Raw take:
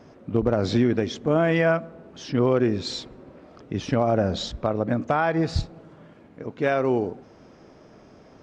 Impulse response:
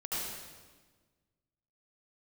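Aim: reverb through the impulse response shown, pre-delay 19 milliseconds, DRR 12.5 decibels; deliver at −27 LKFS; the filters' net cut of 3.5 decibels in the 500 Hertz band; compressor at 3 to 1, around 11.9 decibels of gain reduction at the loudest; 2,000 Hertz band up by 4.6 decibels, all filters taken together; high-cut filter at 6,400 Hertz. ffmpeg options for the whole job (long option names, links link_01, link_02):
-filter_complex "[0:a]lowpass=6400,equalizer=frequency=500:width_type=o:gain=-5,equalizer=frequency=2000:width_type=o:gain=6.5,acompressor=threshold=-34dB:ratio=3,asplit=2[link_01][link_02];[1:a]atrim=start_sample=2205,adelay=19[link_03];[link_02][link_03]afir=irnorm=-1:irlink=0,volume=-17dB[link_04];[link_01][link_04]amix=inputs=2:normalize=0,volume=8.5dB"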